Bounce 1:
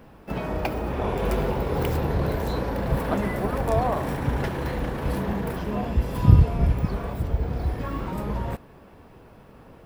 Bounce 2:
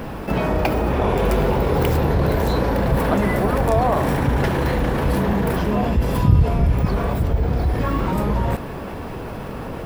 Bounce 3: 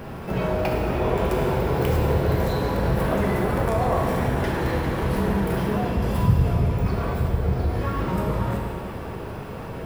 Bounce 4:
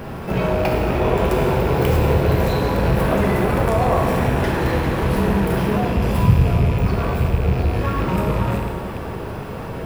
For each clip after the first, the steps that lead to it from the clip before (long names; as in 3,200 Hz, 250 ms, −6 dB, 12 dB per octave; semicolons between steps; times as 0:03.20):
envelope flattener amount 50%; level −1 dB
convolution reverb RT60 2.2 s, pre-delay 3 ms, DRR −1 dB; level −7 dB
loose part that buzzes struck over −25 dBFS, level −29 dBFS; level +4.5 dB